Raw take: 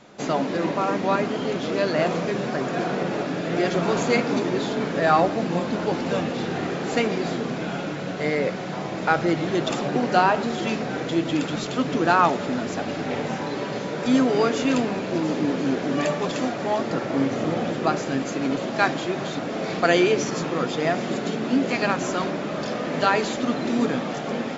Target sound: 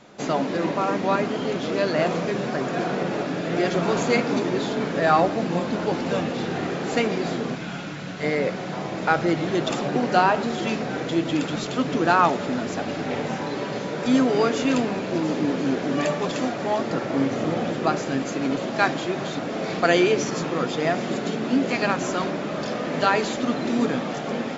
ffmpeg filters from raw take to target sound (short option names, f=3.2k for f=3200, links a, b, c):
-filter_complex "[0:a]asettb=1/sr,asplit=3[a][b][c];[a]atrim=end=7.554[d];[b]atrim=start=7.55:end=8.23,asetpts=PTS-STARTPTS,afade=t=in:d=0.004:c=qsin,afade=t=out:st=0.676:d=0.004:c=qsin,equalizer=f=490:t=o:w=1.8:g=-8.5[e];[c]atrim=start=8.226[f];[d][e]acrossfade=d=0.004:c1=hsin:c2=qsin[g];[g][f]acrossfade=d=0.004:c1=qsin:c2=hsin"